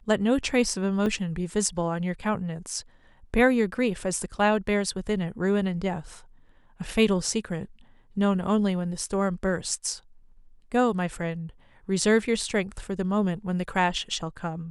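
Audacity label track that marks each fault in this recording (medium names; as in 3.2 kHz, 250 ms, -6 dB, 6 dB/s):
1.060000	1.060000	dropout 3.4 ms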